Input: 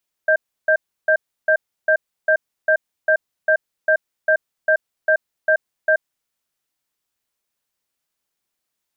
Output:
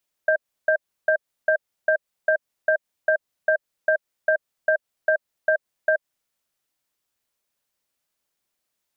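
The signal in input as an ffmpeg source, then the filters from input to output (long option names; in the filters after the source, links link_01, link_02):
-f lavfi -i "aevalsrc='0.188*(sin(2*PI*627*t)+sin(2*PI*1580*t))*clip(min(mod(t,0.4),0.08-mod(t,0.4))/0.005,0,1)':duration=5.84:sample_rate=44100"
-af "equalizer=frequency=590:width=5.1:gain=3.5,acompressor=threshold=-17dB:ratio=6"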